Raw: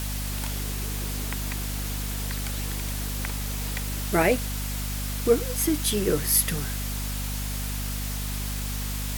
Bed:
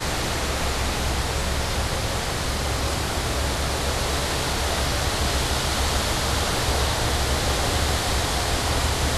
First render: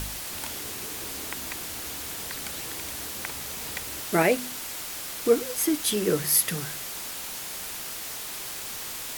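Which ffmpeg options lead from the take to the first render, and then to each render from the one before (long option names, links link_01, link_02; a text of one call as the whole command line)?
ffmpeg -i in.wav -af "bandreject=frequency=50:width_type=h:width=4,bandreject=frequency=100:width_type=h:width=4,bandreject=frequency=150:width_type=h:width=4,bandreject=frequency=200:width_type=h:width=4,bandreject=frequency=250:width_type=h:width=4" out.wav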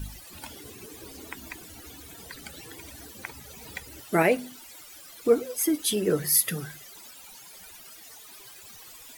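ffmpeg -i in.wav -af "afftdn=noise_reduction=17:noise_floor=-36" out.wav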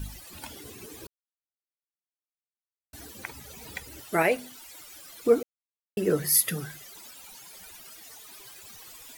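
ffmpeg -i in.wav -filter_complex "[0:a]asettb=1/sr,asplit=3[link_01][link_02][link_03];[link_01]atrim=end=4.094[link_04];[link_02]atrim=start=4.09:end=4.74,asetpts=PTS-STARTPTS,afade=type=in:duration=0.004:curve=qsin,afade=type=out:start_time=0.646:duration=0.004:curve=qsin,equalizer=frequency=220:width_type=o:width=1.8:gain=-6.5[link_05];[link_03]atrim=start=4.736[link_06];[link_04][link_05]acrossfade=duration=0.004:curve1=hsin:curve2=qsin[link_07];[link_07][link_06]acrossfade=duration=0.004:curve1=qsin:curve2=hsin,asplit=5[link_08][link_09][link_10][link_11][link_12];[link_08]atrim=end=1.07,asetpts=PTS-STARTPTS,afade=type=out:start_time=1.066:duration=0.004:curve=hsin[link_13];[link_09]atrim=start=1.07:end=2.93,asetpts=PTS-STARTPTS,volume=0[link_14];[link_10]atrim=start=2.93:end=5.43,asetpts=PTS-STARTPTS,afade=type=in:duration=0.004:curve=hsin,afade=type=out:start_time=2.496:duration=0.004:curve=hsin[link_15];[link_11]atrim=start=5.43:end=5.97,asetpts=PTS-STARTPTS,volume=0[link_16];[link_12]atrim=start=5.97,asetpts=PTS-STARTPTS,afade=type=in:duration=0.004:curve=hsin[link_17];[link_13][link_14][link_15][link_16][link_17]concat=n=5:v=0:a=1" out.wav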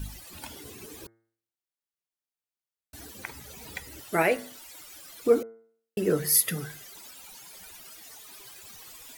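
ffmpeg -i in.wav -af "bandreject=frequency=113.4:width_type=h:width=4,bandreject=frequency=226.8:width_type=h:width=4,bandreject=frequency=340.2:width_type=h:width=4,bandreject=frequency=453.6:width_type=h:width=4,bandreject=frequency=567:width_type=h:width=4,bandreject=frequency=680.4:width_type=h:width=4,bandreject=frequency=793.8:width_type=h:width=4,bandreject=frequency=907.2:width_type=h:width=4,bandreject=frequency=1020.6:width_type=h:width=4,bandreject=frequency=1134:width_type=h:width=4,bandreject=frequency=1247.4:width_type=h:width=4,bandreject=frequency=1360.8:width_type=h:width=4,bandreject=frequency=1474.2:width_type=h:width=4,bandreject=frequency=1587.6:width_type=h:width=4,bandreject=frequency=1701:width_type=h:width=4,bandreject=frequency=1814.4:width_type=h:width=4,bandreject=frequency=1927.8:width_type=h:width=4,bandreject=frequency=2041.2:width_type=h:width=4,bandreject=frequency=2154.6:width_type=h:width=4" out.wav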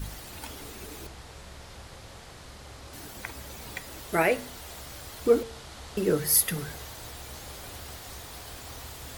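ffmpeg -i in.wav -i bed.wav -filter_complex "[1:a]volume=-21dB[link_01];[0:a][link_01]amix=inputs=2:normalize=0" out.wav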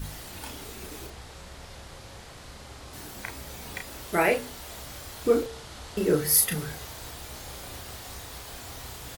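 ffmpeg -i in.wav -filter_complex "[0:a]asplit=2[link_01][link_02];[link_02]adelay=33,volume=-4.5dB[link_03];[link_01][link_03]amix=inputs=2:normalize=0" out.wav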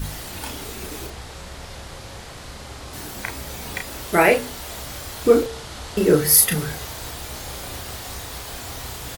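ffmpeg -i in.wav -af "volume=7.5dB,alimiter=limit=-1dB:level=0:latency=1" out.wav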